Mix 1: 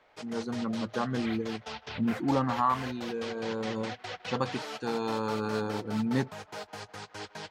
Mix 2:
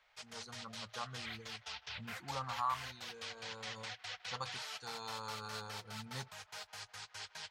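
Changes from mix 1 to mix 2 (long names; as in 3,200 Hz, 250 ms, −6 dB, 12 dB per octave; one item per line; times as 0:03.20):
speech: add flat-topped bell 2,300 Hz −9 dB 1.2 octaves
master: add guitar amp tone stack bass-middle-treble 10-0-10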